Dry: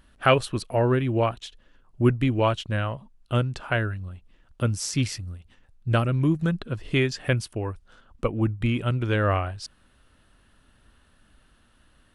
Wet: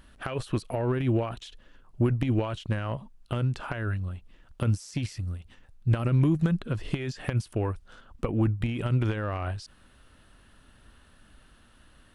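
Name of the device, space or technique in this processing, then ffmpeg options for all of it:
de-esser from a sidechain: -filter_complex "[0:a]asplit=2[link_01][link_02];[link_02]highpass=frequency=6300:poles=1,apad=whole_len=535517[link_03];[link_01][link_03]sidechaincompress=threshold=-49dB:ratio=12:attack=4.9:release=34,volume=3dB"

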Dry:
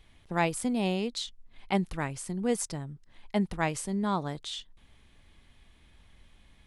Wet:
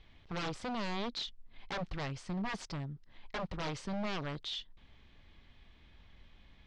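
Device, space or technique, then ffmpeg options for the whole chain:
synthesiser wavefolder: -af "aeval=exprs='0.0299*(abs(mod(val(0)/0.0299+3,4)-2)-1)':channel_layout=same,lowpass=frequency=5200:width=0.5412,lowpass=frequency=5200:width=1.3066,volume=-1dB"

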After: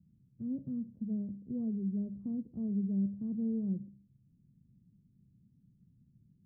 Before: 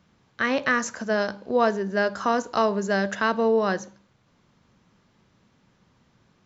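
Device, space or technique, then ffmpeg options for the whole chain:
the neighbour's flat through the wall: -af "lowpass=frequency=240:width=0.5412,lowpass=frequency=240:width=1.3066,equalizer=frequency=140:width_type=o:width=0.98:gain=6,volume=-4.5dB"

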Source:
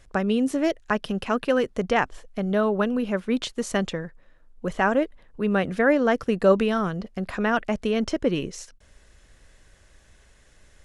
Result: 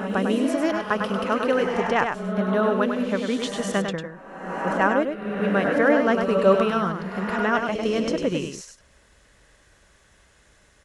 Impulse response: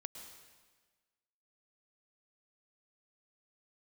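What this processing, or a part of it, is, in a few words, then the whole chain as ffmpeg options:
reverse reverb: -filter_complex "[0:a]highpass=frequency=79:poles=1,areverse[link_01];[1:a]atrim=start_sample=2205[link_02];[link_01][link_02]afir=irnorm=-1:irlink=0,areverse,equalizer=frequency=1200:width=1.6:gain=3.5,aecho=1:1:100:0.501,volume=3.5dB"

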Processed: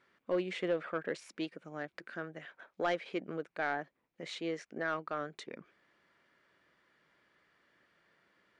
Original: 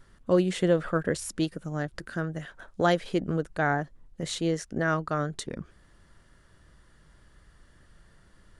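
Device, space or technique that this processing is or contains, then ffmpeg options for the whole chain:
intercom: -af "highpass=310,lowpass=4100,equalizer=frequency=2300:width_type=o:width=0.35:gain=9.5,asoftclip=type=tanh:threshold=-15dB,volume=-7dB"

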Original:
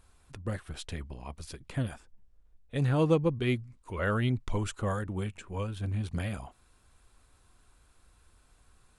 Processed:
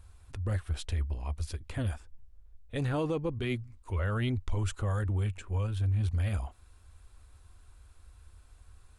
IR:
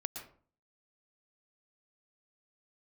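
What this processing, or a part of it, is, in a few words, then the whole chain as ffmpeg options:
car stereo with a boomy subwoofer: -af "lowshelf=frequency=110:width_type=q:width=3:gain=7,alimiter=limit=-23.5dB:level=0:latency=1:release=14"

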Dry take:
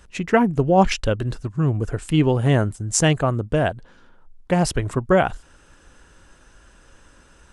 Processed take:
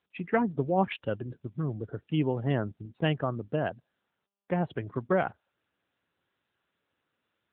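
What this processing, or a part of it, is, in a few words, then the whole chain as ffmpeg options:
mobile call with aggressive noise cancelling: -af "highpass=110,afftdn=noise_reduction=27:noise_floor=-35,volume=-9dB" -ar 8000 -c:a libopencore_amrnb -b:a 10200

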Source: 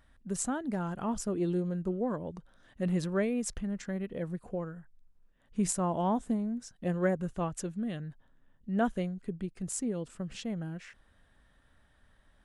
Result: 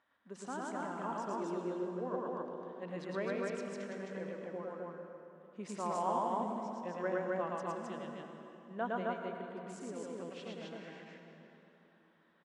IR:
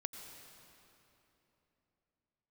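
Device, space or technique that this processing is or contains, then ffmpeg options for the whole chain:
station announcement: -filter_complex "[0:a]highpass=350,lowpass=3700,equalizer=frequency=1000:width_type=o:width=0.37:gain=6,aecho=1:1:110.8|262.4:0.891|0.891[link_01];[1:a]atrim=start_sample=2205[link_02];[link_01][link_02]afir=irnorm=-1:irlink=0,volume=-4.5dB"

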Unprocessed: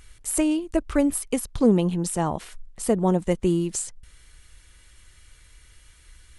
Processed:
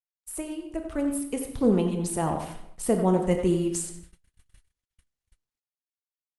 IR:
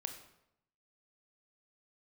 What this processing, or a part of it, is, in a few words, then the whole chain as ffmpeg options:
speakerphone in a meeting room: -filter_complex "[1:a]atrim=start_sample=2205[link_01];[0:a][link_01]afir=irnorm=-1:irlink=0,asplit=2[link_02][link_03];[link_03]adelay=90,highpass=300,lowpass=3400,asoftclip=type=hard:threshold=-19dB,volume=-9dB[link_04];[link_02][link_04]amix=inputs=2:normalize=0,dynaudnorm=framelen=220:gausssize=13:maxgain=15.5dB,agate=range=-50dB:threshold=-36dB:ratio=16:detection=peak,volume=-8.5dB" -ar 48000 -c:a libopus -b:a 32k

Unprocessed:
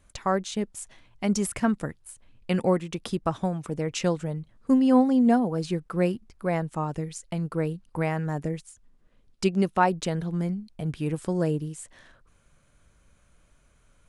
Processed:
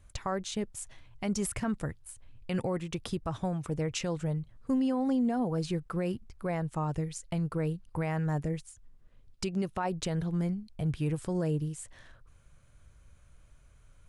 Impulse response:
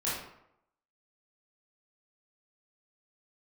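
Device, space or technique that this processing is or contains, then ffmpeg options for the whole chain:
car stereo with a boomy subwoofer: -af "lowshelf=frequency=150:width_type=q:width=1.5:gain=6.5,alimiter=limit=-20dB:level=0:latency=1:release=63,volume=-2.5dB"

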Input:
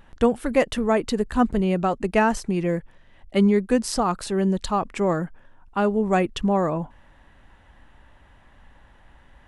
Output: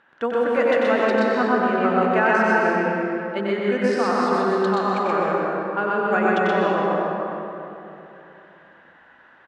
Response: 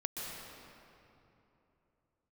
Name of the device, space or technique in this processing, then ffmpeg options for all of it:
station announcement: -filter_complex "[0:a]highpass=310,lowpass=4000,equalizer=frequency=1500:width_type=o:width=0.48:gain=10.5,aecho=1:1:93.29|125.4:0.562|0.891[link_01];[1:a]atrim=start_sample=2205[link_02];[link_01][link_02]afir=irnorm=-1:irlink=0,volume=-2.5dB"

